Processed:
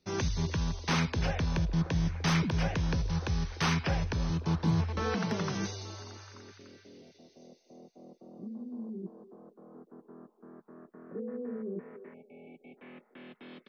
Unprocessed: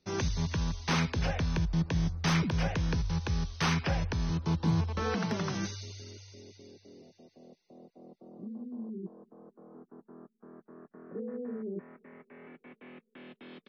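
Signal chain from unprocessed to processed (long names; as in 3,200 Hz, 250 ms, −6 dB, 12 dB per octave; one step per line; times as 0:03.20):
echo through a band-pass that steps 294 ms, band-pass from 440 Hz, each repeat 0.7 octaves, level −10 dB
time-frequency box erased 0:12.14–0:12.78, 850–2,200 Hz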